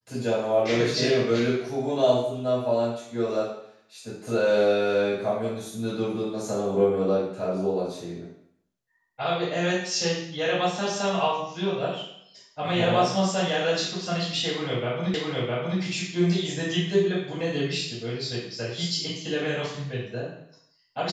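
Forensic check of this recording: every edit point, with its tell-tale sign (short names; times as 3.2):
15.14 repeat of the last 0.66 s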